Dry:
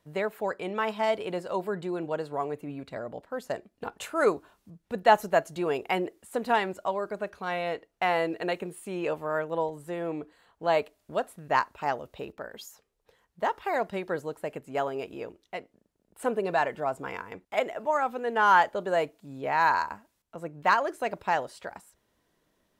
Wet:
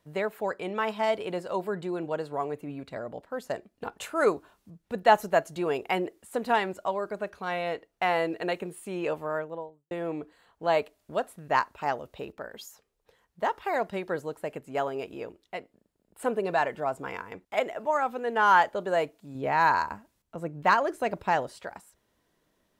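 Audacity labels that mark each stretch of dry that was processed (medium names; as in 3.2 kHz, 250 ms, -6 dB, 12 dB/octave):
9.170000	9.910000	studio fade out
15.250000	16.310000	band-stop 6 kHz
19.350000	21.590000	bass shelf 350 Hz +6.5 dB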